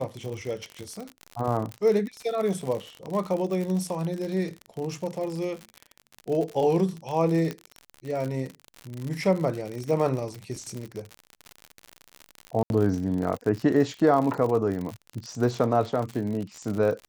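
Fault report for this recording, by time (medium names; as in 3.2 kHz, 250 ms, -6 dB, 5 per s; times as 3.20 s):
crackle 68 per s -30 dBFS
1.72 s: pop -21 dBFS
7.51 s: pop -17 dBFS
12.63–12.70 s: dropout 71 ms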